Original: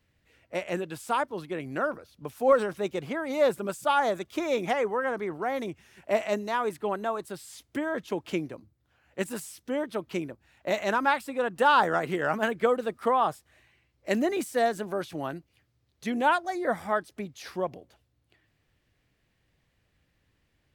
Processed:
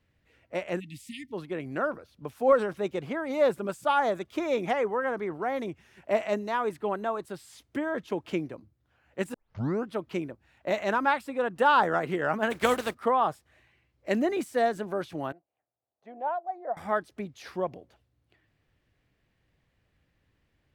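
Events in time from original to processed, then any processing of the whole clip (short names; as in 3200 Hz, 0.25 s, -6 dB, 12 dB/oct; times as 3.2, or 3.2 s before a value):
0.79–1.33 spectral delete 310–1800 Hz
9.34 tape start 0.60 s
12.5–12.93 spectral contrast lowered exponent 0.53
15.32–16.77 band-pass 710 Hz, Q 4.2
whole clip: high shelf 4300 Hz -8 dB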